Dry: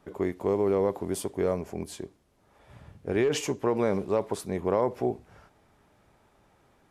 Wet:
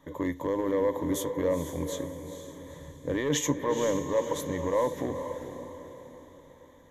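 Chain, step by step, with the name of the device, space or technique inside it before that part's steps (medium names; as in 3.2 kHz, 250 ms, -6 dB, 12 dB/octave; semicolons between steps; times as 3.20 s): limiter into clipper (peak limiter -19 dBFS, peak gain reduction 6.5 dB; hard clipper -21 dBFS, distortion -24 dB); rippled EQ curve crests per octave 1.1, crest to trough 15 dB; echo that smears into a reverb 467 ms, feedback 45%, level -8.5 dB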